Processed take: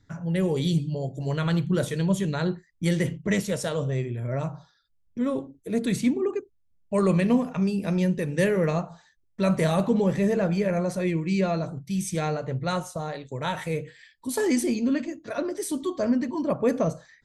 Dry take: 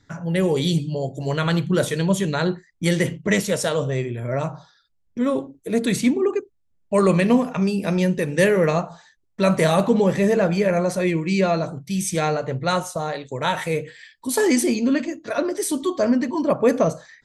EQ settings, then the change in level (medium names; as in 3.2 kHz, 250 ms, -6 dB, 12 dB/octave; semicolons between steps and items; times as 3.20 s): bass shelf 200 Hz +8.5 dB; -7.5 dB